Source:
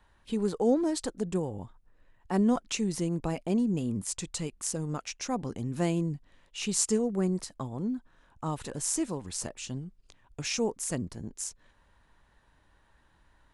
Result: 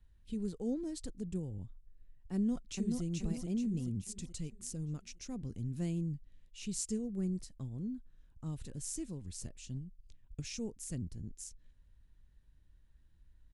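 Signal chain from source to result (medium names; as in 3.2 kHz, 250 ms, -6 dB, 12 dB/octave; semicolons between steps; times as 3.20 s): amplifier tone stack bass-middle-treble 10-0-1; 2.34–3.03 s: echo throw 430 ms, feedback 45%, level -3 dB; 9.73–10.40 s: transient shaper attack +5 dB, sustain -2 dB; trim +9.5 dB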